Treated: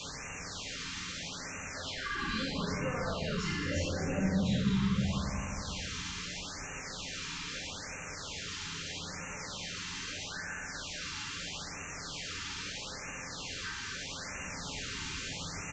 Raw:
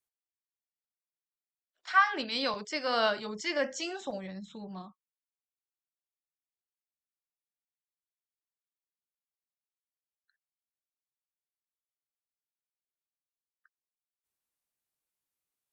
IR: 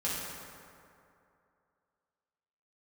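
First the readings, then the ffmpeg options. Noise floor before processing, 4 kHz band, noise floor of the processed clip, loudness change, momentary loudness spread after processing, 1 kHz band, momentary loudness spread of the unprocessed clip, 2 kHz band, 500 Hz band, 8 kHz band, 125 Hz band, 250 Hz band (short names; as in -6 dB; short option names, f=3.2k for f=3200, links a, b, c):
under -85 dBFS, +3.5 dB, -43 dBFS, -6.0 dB, 9 LU, -6.5 dB, 18 LU, -1.0 dB, -3.5 dB, +12.5 dB, +19.5 dB, +8.0 dB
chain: -filter_complex "[0:a]aeval=exprs='val(0)+0.5*0.0376*sgn(val(0))':c=same,asplit=8[a][b][c][d][e][f][g][h];[b]adelay=217,afreqshift=-63,volume=-8dB[i];[c]adelay=434,afreqshift=-126,volume=-12.9dB[j];[d]adelay=651,afreqshift=-189,volume=-17.8dB[k];[e]adelay=868,afreqshift=-252,volume=-22.6dB[l];[f]adelay=1085,afreqshift=-315,volume=-27.5dB[m];[g]adelay=1302,afreqshift=-378,volume=-32.4dB[n];[h]adelay=1519,afreqshift=-441,volume=-37.3dB[o];[a][i][j][k][l][m][n][o]amix=inputs=8:normalize=0,areverse,acompressor=mode=upward:threshold=-33dB:ratio=2.5,areverse,flanger=delay=6.9:depth=3.6:regen=-37:speed=1.5:shape=sinusoidal,equalizer=f=2.9k:w=0.58:g=8,aresample=16000,asoftclip=type=tanh:threshold=-23.5dB,aresample=44100,acrossover=split=170[p][q];[q]acompressor=threshold=-43dB:ratio=5[r];[p][r]amix=inputs=2:normalize=0,lowshelf=f=370:g=5.5[s];[1:a]atrim=start_sample=2205[t];[s][t]afir=irnorm=-1:irlink=0,afftfilt=real='re*(1-between(b*sr/1024,570*pow(4100/570,0.5+0.5*sin(2*PI*0.78*pts/sr))/1.41,570*pow(4100/570,0.5+0.5*sin(2*PI*0.78*pts/sr))*1.41))':imag='im*(1-between(b*sr/1024,570*pow(4100/570,0.5+0.5*sin(2*PI*0.78*pts/sr))/1.41,570*pow(4100/570,0.5+0.5*sin(2*PI*0.78*pts/sr))*1.41))':win_size=1024:overlap=0.75"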